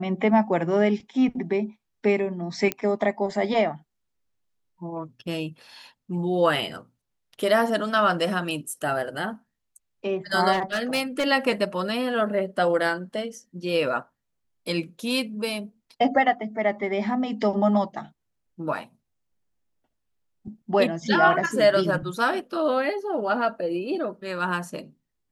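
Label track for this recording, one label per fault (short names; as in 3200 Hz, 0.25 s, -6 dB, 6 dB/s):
2.720000	2.720000	pop -10 dBFS
10.520000	11.260000	clipped -20 dBFS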